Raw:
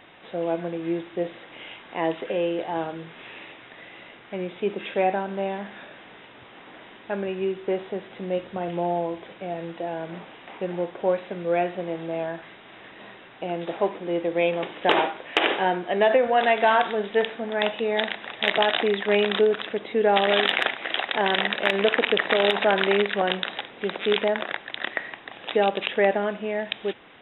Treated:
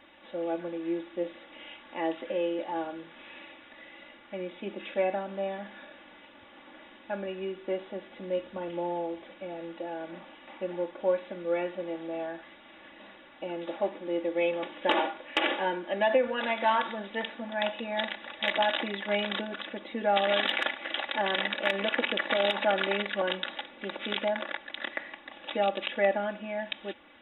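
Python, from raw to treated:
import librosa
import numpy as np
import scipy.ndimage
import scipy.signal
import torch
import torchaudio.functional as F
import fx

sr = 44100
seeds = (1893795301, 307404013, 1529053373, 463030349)

y = x + 0.97 * np.pad(x, (int(3.5 * sr / 1000.0), 0))[:len(x)]
y = y * librosa.db_to_amplitude(-8.5)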